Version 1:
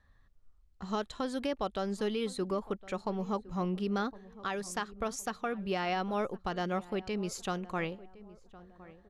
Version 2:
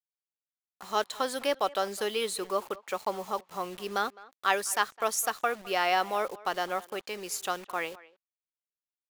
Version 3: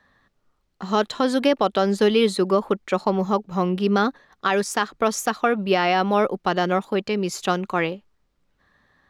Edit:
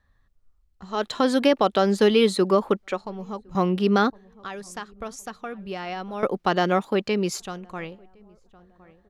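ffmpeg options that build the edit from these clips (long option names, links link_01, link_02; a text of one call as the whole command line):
ffmpeg -i take0.wav -i take1.wav -i take2.wav -filter_complex "[2:a]asplit=3[link_01][link_02][link_03];[0:a]asplit=4[link_04][link_05][link_06][link_07];[link_04]atrim=end=1.12[link_08];[link_01]atrim=start=0.88:end=3.05[link_09];[link_05]atrim=start=2.81:end=3.552[link_10];[link_02]atrim=start=3.548:end=4.102[link_11];[link_06]atrim=start=4.098:end=6.232[link_12];[link_03]atrim=start=6.228:end=7.402[link_13];[link_07]atrim=start=7.398[link_14];[link_08][link_09]acrossfade=duration=0.24:curve1=tri:curve2=tri[link_15];[link_15][link_10]acrossfade=duration=0.24:curve1=tri:curve2=tri[link_16];[link_16][link_11]acrossfade=duration=0.004:curve1=hsin:curve2=hsin[link_17];[link_17][link_12]acrossfade=duration=0.004:curve1=hsin:curve2=hsin[link_18];[link_18][link_13]acrossfade=duration=0.004:curve1=hsin:curve2=hsin[link_19];[link_19][link_14]acrossfade=duration=0.004:curve1=hsin:curve2=hsin" out.wav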